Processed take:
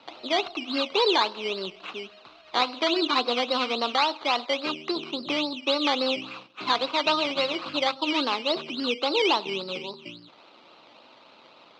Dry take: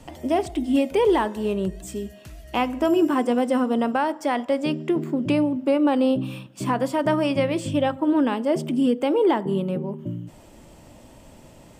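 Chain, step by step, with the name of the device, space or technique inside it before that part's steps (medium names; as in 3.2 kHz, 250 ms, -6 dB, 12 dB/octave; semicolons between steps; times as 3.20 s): circuit-bent sampling toy (decimation with a swept rate 13×, swing 60% 3.6 Hz; cabinet simulation 510–4600 Hz, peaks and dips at 590 Hz -4 dB, 1.2 kHz +7 dB, 1.8 kHz -8 dB, 2.7 kHz +7 dB, 4 kHz +10 dB)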